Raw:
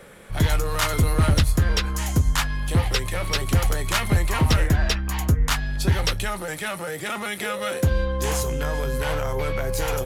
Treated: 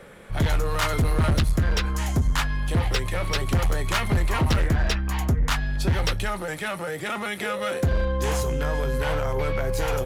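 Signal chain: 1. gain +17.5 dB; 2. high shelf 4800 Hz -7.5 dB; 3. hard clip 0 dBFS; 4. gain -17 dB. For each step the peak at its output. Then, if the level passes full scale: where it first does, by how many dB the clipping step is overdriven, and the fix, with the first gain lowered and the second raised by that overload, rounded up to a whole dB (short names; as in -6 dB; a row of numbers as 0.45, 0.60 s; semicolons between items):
+5.5, +5.5, 0.0, -17.0 dBFS; step 1, 5.5 dB; step 1 +11.5 dB, step 4 -11 dB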